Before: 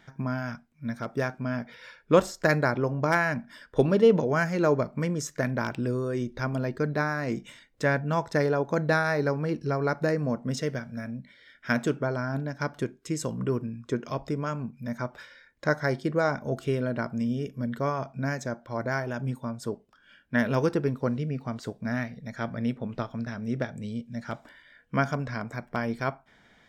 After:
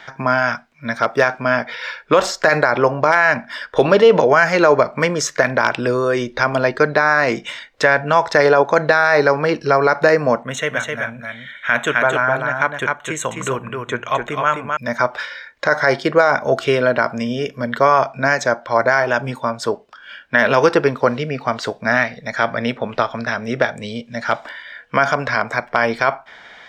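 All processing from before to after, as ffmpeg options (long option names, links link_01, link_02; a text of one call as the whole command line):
ffmpeg -i in.wav -filter_complex "[0:a]asettb=1/sr,asplit=3[link_01][link_02][link_03];[link_01]atrim=end=10.434[link_04];[link_02]atrim=start=10.43:end=14.77,asetpts=PTS-STARTPTS,afade=type=in:duration=0.004:curve=qsin,afade=type=out:start_time=4.336:duration=0.004:curve=qsin,asuperstop=centerf=4900:order=4:qfactor=1.7,equalizer=frequency=350:width_type=o:width=2.4:gain=-8,aecho=1:1:258:0.596,atrim=end_sample=191394[link_05];[link_03]atrim=start=14.766[link_06];[link_04][link_05]acrossfade=duration=0.004:curve1=hsin:curve2=qsin[link_07];[link_07][link_06]acrossfade=duration=0.004:curve1=qsin:curve2=hsin,acrossover=split=500 5800:gain=0.141 1 0.178[link_08][link_09][link_10];[link_08][link_09][link_10]amix=inputs=3:normalize=0,alimiter=level_in=21dB:limit=-1dB:release=50:level=0:latency=1,volume=-1dB" out.wav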